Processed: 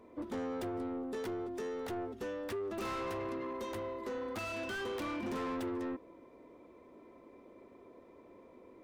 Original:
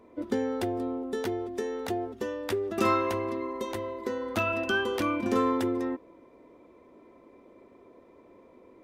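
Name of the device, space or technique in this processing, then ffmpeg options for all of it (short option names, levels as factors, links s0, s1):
saturation between pre-emphasis and de-emphasis: -af "highshelf=f=2400:g=9.5,asoftclip=type=tanh:threshold=0.0237,highshelf=f=2400:g=-9.5,volume=0.794"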